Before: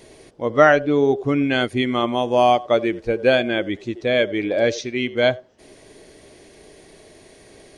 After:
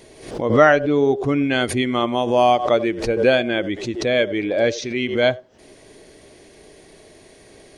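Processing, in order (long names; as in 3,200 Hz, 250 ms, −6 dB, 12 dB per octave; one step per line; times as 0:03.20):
background raised ahead of every attack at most 91 dB per second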